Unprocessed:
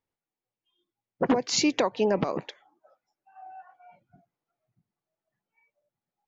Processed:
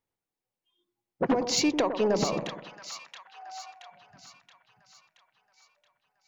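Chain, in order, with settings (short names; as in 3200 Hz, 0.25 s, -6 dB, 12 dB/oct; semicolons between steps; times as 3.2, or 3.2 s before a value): soft clip -16 dBFS, distortion -18 dB; on a send: split-band echo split 1100 Hz, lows 99 ms, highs 0.675 s, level -8 dB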